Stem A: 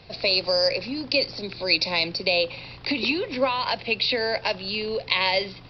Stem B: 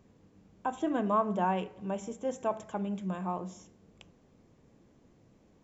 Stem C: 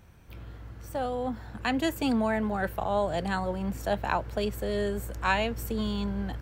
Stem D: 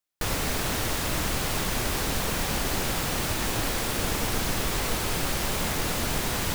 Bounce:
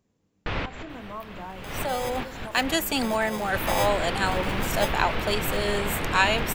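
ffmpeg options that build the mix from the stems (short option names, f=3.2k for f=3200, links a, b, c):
-filter_complex "[0:a]asplit=3[a][b][c];[a]bandpass=f=530:t=q:w=8,volume=0dB[d];[b]bandpass=f=1.84k:t=q:w=8,volume=-6dB[e];[c]bandpass=f=2.48k:t=q:w=8,volume=-9dB[f];[d][e][f]amix=inputs=3:normalize=0,acrusher=samples=31:mix=1:aa=0.000001,adelay=1400,volume=-4.5dB,afade=t=in:st=2.74:d=0.68:silence=0.334965,afade=t=out:st=4.4:d=0.8:silence=0.237137[g];[1:a]volume=-11dB,asplit=2[h][i];[2:a]highpass=f=500:p=1,dynaudnorm=f=120:g=11:m=7.5dB,adelay=900,volume=-3dB[j];[3:a]lowpass=f=2.9k:w=0.5412,lowpass=f=2.9k:w=1.3066,adelay=250,volume=0dB[k];[i]apad=whole_len=299637[l];[k][l]sidechaincompress=threshold=-53dB:ratio=8:attack=9.4:release=218[m];[g][h][j][m]amix=inputs=4:normalize=0,highshelf=f=3.3k:g=8.5"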